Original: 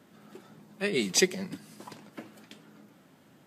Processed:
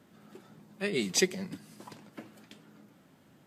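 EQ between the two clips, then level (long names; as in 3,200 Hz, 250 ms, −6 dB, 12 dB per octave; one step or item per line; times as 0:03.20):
low-shelf EQ 77 Hz +10.5 dB
−3.0 dB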